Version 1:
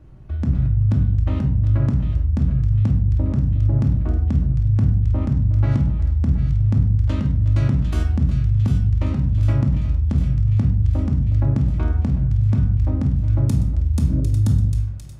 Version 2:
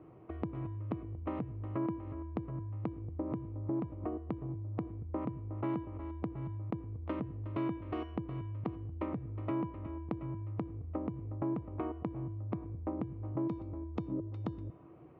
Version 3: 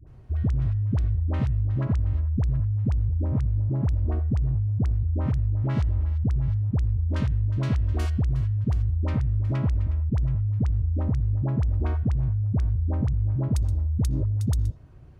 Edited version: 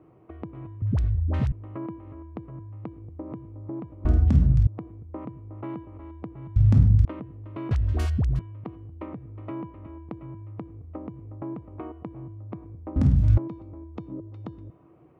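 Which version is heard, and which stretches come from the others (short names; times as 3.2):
2
0.82–1.52 from 3
4.05–4.67 from 1
6.56–7.05 from 1
7.71–8.39 from 3
12.96–13.38 from 1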